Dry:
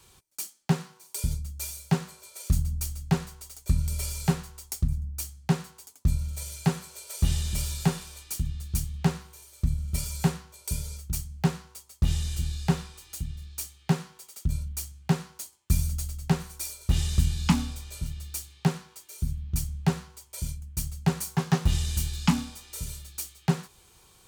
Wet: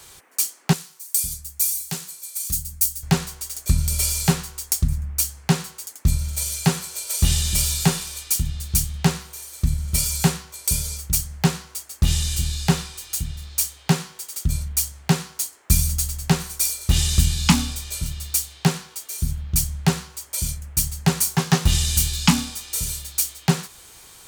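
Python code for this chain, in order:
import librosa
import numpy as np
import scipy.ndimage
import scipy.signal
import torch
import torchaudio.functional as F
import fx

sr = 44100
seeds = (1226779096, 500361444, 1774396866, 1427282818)

y = fx.high_shelf(x, sr, hz=2100.0, db=9.0)
y = fx.dmg_noise_band(y, sr, seeds[0], low_hz=250.0, high_hz=2200.0, level_db=-63.0)
y = fx.pre_emphasis(y, sr, coefficient=0.8, at=(0.73, 3.03))
y = y * 10.0 ** (5.0 / 20.0)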